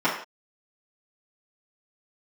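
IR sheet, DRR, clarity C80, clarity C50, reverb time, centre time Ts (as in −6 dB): −11.0 dB, 9.0 dB, 5.5 dB, non-exponential decay, 32 ms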